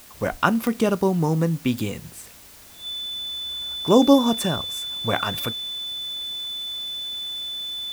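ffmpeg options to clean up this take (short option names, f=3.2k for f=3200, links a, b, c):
-af "adeclick=t=4,bandreject=f=3.5k:w=30,afwtdn=0.0045"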